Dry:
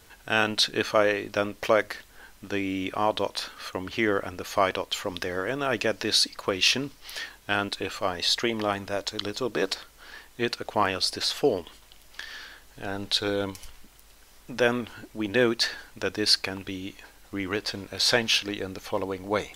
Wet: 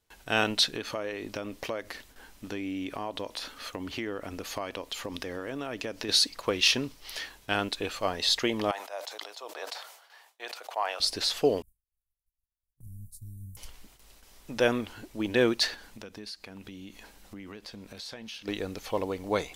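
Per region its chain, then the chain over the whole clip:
0.75–6.09 bell 270 Hz +5 dB 0.32 oct + compressor 3:1, threshold -31 dBFS
8.71–11 ladder high-pass 600 Hz, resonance 45% + sustainer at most 74 dB/s
11.62–13.57 inverse Chebyshev band-stop 510–3000 Hz, stop band 70 dB + expander -46 dBFS
15.74–18.48 bell 210 Hz +7.5 dB 0.43 oct + compressor 4:1, threshold -41 dBFS
whole clip: gate with hold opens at -43 dBFS; bell 1500 Hz -3.5 dB 0.75 oct; gain -1 dB

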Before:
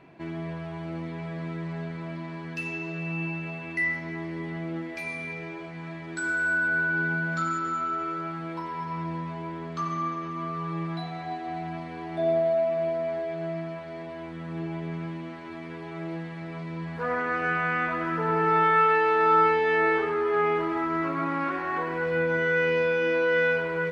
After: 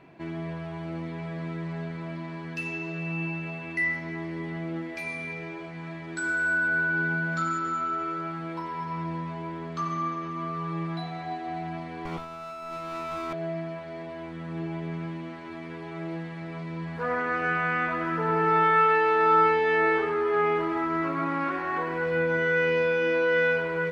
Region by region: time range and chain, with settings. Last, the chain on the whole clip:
12.05–13.33 minimum comb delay 0.91 ms + negative-ratio compressor -36 dBFS
whole clip: dry

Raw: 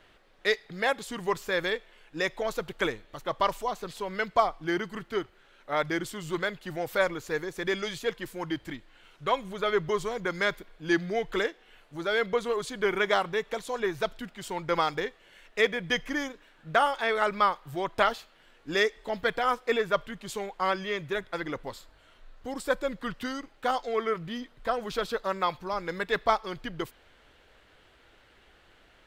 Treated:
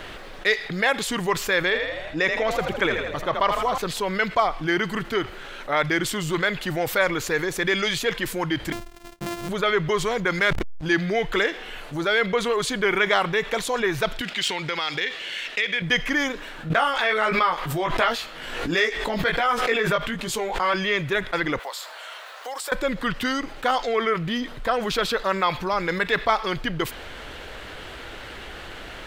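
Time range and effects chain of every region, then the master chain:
1.61–3.78 high shelf 4500 Hz -8 dB + frequency-shifting echo 81 ms, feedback 54%, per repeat +40 Hz, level -9.5 dB
8.72–9.49 sample sorter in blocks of 128 samples + gate -54 dBFS, range -42 dB + compressor 10:1, threshold -40 dBFS
10.39–10.86 backlash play -34.5 dBFS + sustainer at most 62 dB/s
14.21–15.82 median filter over 3 samples + compressor, threshold -38 dBFS + weighting filter D
16.7–20.74 chorus 1.4 Hz, delay 17 ms, depth 2.4 ms + backwards sustainer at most 81 dB/s
21.59–22.72 block floating point 7-bit + HPF 600 Hz 24 dB/oct + compressor 2:1, threshold -50 dBFS
whole clip: dynamic EQ 2300 Hz, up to +6 dB, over -43 dBFS, Q 0.85; fast leveller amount 50%

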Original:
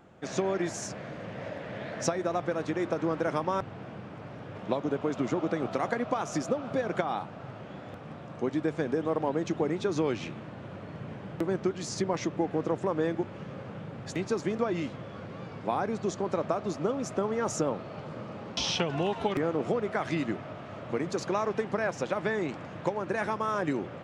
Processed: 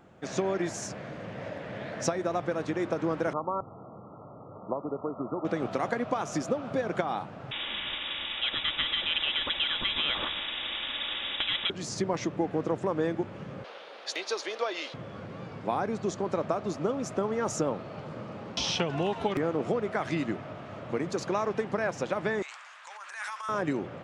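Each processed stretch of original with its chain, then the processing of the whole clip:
3.33–5.45 brick-wall FIR low-pass 1400 Hz + low shelf 400 Hz -7.5 dB
7.51–11.7 inverted band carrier 3600 Hz + comb 3.5 ms, depth 48% + spectral compressor 2:1
13.64–14.94 HPF 450 Hz 24 dB/oct + bell 4000 Hz +12.5 dB 1.3 oct + notch 7600 Hz, Q 5.7
22.42–23.49 HPF 1100 Hz 24 dB/oct + transient shaper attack -10 dB, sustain +6 dB + bell 8300 Hz +8.5 dB 0.99 oct
whole clip: dry

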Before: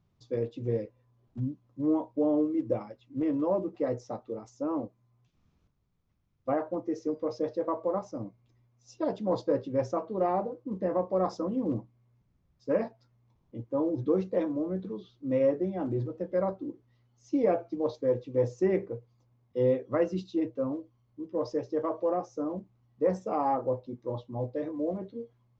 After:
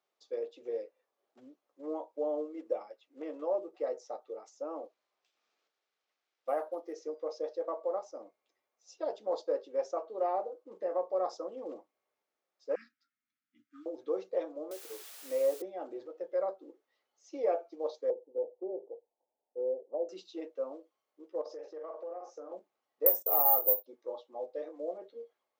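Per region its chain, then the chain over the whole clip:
4.84–6.93 high shelf 2700 Hz +10 dB + decimation joined by straight lines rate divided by 4×
12.75–13.86 Chebyshev band-stop 290–1300 Hz, order 5 + mismatched tape noise reduction decoder only
14.71–15.62 Chebyshev high-pass 260 Hz, order 4 + requantised 8-bit, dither triangular
18.1–20.09 Chebyshev low-pass 930 Hz, order 6 + low shelf 240 Hz -9 dB + treble ducked by the level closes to 730 Hz, closed at -27.5 dBFS
21.41–22.52 high shelf 4200 Hz -5.5 dB + doubler 45 ms -4.5 dB + compressor 5:1, threshold -35 dBFS
23.06–23.86 high shelf 4500 Hz +3.5 dB + careless resampling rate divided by 3×, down none, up zero stuff + gate -44 dBFS, range -19 dB
whole clip: HPF 460 Hz 24 dB/oct; notch 1000 Hz, Q 8.8; dynamic EQ 1900 Hz, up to -6 dB, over -51 dBFS, Q 1; gain -1.5 dB

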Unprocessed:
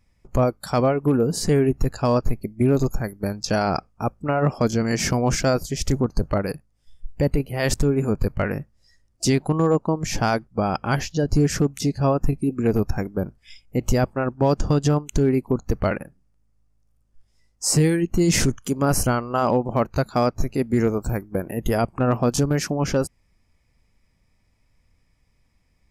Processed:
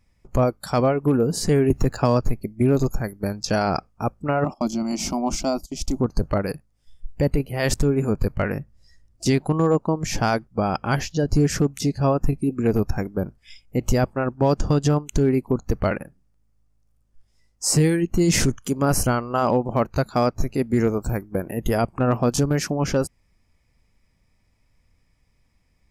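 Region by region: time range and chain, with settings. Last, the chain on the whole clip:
1.7–2.28 median filter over 3 samples + bell 6700 Hz +3 dB 0.36 oct + three-band squash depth 70%
4.44–6 gate -31 dBFS, range -17 dB + high shelf 7600 Hz -4.5 dB + fixed phaser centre 460 Hz, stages 6
8.59–9.26 compressor 1.5:1, threshold -44 dBFS + low shelf 200 Hz +8 dB
whole clip: dry

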